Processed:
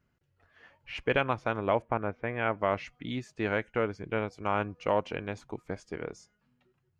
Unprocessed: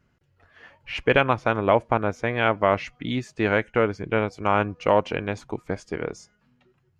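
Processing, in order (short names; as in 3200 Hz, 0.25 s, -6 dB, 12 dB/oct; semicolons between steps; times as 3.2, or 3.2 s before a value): 1.82–2.59 LPF 2700 Hz 24 dB/oct; gain -8 dB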